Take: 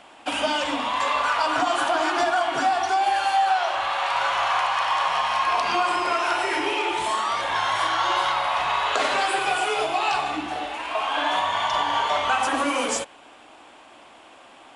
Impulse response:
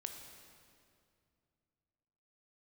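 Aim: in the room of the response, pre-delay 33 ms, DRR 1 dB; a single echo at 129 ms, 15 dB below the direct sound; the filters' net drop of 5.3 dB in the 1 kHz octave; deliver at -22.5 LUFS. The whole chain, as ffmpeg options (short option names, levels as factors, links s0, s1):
-filter_complex "[0:a]equalizer=f=1000:t=o:g=-7,aecho=1:1:129:0.178,asplit=2[s0][s1];[1:a]atrim=start_sample=2205,adelay=33[s2];[s1][s2]afir=irnorm=-1:irlink=0,volume=1.19[s3];[s0][s3]amix=inputs=2:normalize=0,volume=1.12"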